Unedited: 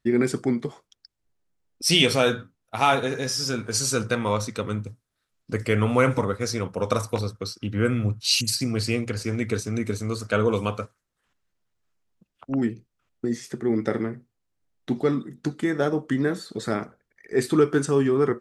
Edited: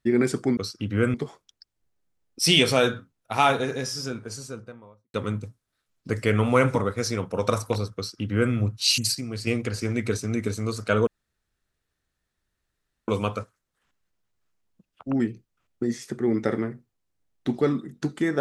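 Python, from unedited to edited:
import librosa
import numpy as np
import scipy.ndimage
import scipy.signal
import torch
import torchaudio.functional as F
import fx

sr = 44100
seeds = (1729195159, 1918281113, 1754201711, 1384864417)

y = fx.studio_fade_out(x, sr, start_s=2.84, length_s=1.73)
y = fx.edit(y, sr, fx.duplicate(start_s=7.39, length_s=0.57, to_s=0.57),
    fx.clip_gain(start_s=8.58, length_s=0.32, db=-7.0),
    fx.insert_room_tone(at_s=10.5, length_s=2.01), tone=tone)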